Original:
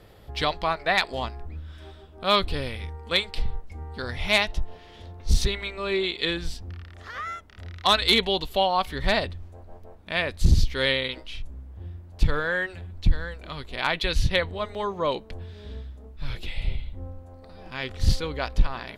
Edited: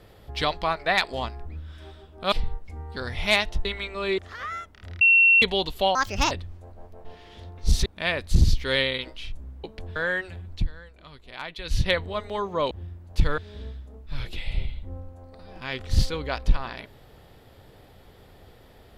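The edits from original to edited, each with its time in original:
0:02.32–0:03.34: remove
0:04.67–0:05.48: move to 0:09.96
0:06.01–0:06.93: remove
0:07.76–0:08.17: beep over 2,720 Hz −13 dBFS
0:08.70–0:09.22: play speed 145%
0:11.74–0:12.41: swap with 0:15.16–0:15.48
0:12.99–0:14.23: duck −11 dB, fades 0.14 s

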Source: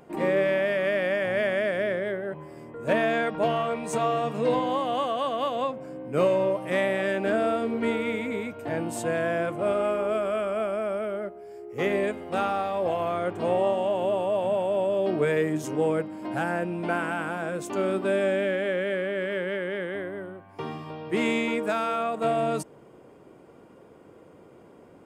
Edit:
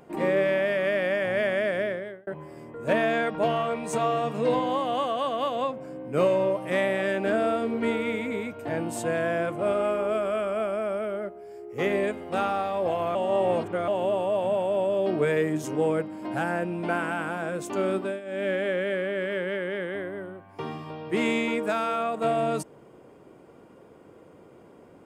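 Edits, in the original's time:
0:01.79–0:02.27: fade out
0:13.15–0:13.88: reverse
0:17.96–0:18.50: duck −16 dB, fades 0.25 s

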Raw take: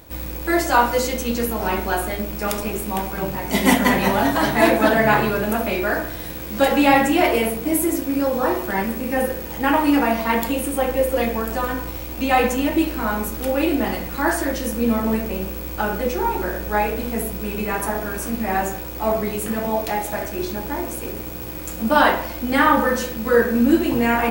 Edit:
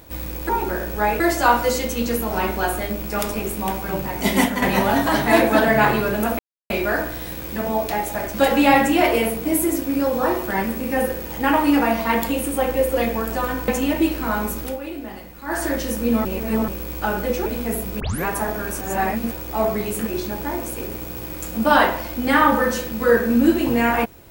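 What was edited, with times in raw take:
0:03.59–0:03.91: fade out, to −9.5 dB
0:05.68: splice in silence 0.31 s
0:11.88–0:12.44: remove
0:13.36–0:14.41: duck −12 dB, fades 0.20 s
0:15.01–0:15.44: reverse
0:16.22–0:16.93: move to 0:00.49
0:17.47: tape start 0.25 s
0:18.28–0:18.78: reverse
0:19.54–0:20.32: move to 0:06.54

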